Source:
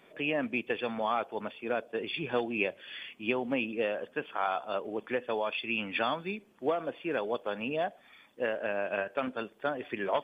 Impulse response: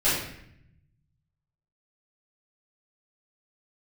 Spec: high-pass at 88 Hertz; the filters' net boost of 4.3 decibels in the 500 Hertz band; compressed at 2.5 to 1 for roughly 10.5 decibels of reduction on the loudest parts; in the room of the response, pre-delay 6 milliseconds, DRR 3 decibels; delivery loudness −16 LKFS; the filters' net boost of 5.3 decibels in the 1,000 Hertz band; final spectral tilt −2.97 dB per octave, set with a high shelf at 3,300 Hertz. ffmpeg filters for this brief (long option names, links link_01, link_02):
-filter_complex "[0:a]highpass=88,equalizer=frequency=500:width_type=o:gain=3.5,equalizer=frequency=1000:width_type=o:gain=6.5,highshelf=frequency=3300:gain=-6,acompressor=threshold=-36dB:ratio=2.5,asplit=2[link_01][link_02];[1:a]atrim=start_sample=2205,adelay=6[link_03];[link_02][link_03]afir=irnorm=-1:irlink=0,volume=-17.5dB[link_04];[link_01][link_04]amix=inputs=2:normalize=0,volume=20dB"